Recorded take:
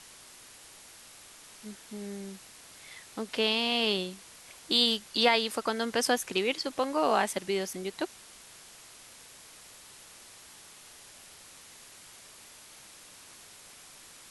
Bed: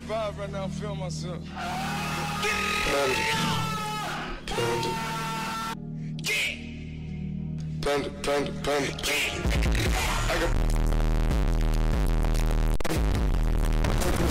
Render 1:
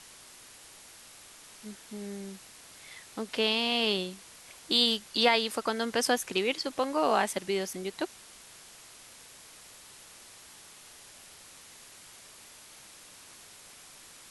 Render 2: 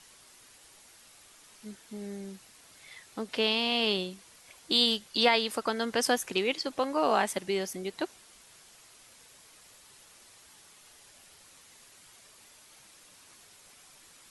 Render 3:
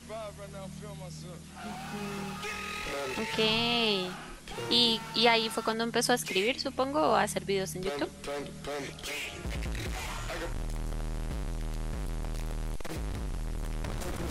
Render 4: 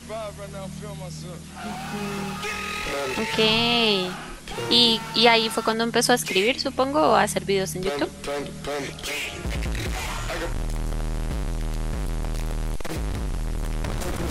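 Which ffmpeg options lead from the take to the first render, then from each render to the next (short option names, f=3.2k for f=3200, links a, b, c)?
-af anull
-af "afftdn=nr=6:nf=-52"
-filter_complex "[1:a]volume=-10.5dB[a];[0:a][a]amix=inputs=2:normalize=0"
-af "volume=7.5dB,alimiter=limit=-3dB:level=0:latency=1"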